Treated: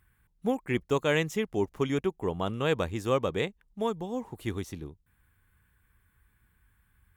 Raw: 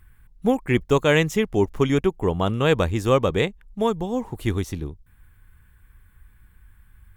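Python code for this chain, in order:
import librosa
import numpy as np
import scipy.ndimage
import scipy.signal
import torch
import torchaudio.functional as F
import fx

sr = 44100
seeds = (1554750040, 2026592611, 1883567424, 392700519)

y = fx.highpass(x, sr, hz=120.0, slope=6)
y = y * 10.0 ** (-7.5 / 20.0)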